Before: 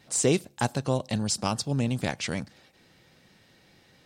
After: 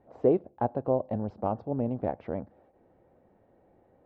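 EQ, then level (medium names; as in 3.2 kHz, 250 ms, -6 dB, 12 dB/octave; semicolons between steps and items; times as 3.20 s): resonant low-pass 680 Hz, resonance Q 1.6; distance through air 190 m; peaking EQ 150 Hz -9.5 dB 0.93 oct; 0.0 dB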